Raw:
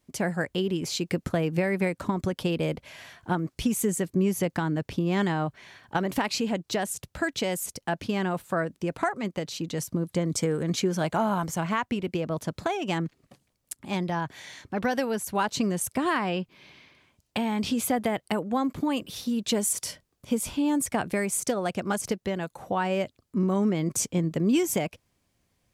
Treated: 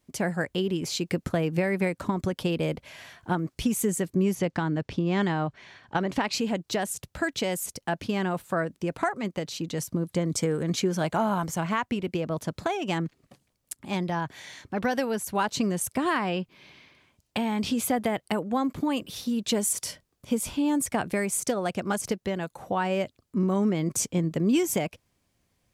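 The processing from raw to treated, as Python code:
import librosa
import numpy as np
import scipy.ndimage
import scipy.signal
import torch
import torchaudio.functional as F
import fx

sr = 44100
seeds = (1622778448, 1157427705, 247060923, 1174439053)

y = fx.lowpass(x, sr, hz=6300.0, slope=12, at=(4.35, 6.33))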